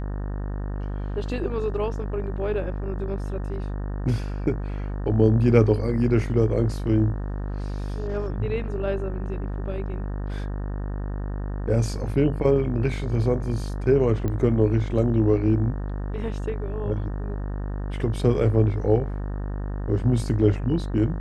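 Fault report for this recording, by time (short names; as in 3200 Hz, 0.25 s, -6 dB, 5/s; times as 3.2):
buzz 50 Hz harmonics 37 -29 dBFS
14.28 pop -17 dBFS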